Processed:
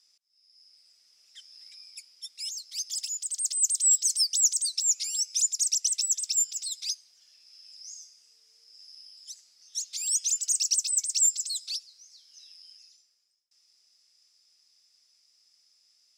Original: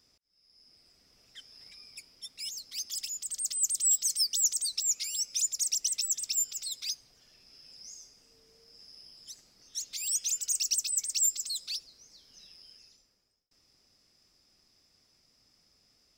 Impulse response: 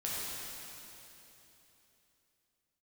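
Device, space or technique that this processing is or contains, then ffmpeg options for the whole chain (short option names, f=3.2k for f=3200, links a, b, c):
piezo pickup straight into a mixer: -af "lowpass=7.9k,aderivative,volume=6.5dB"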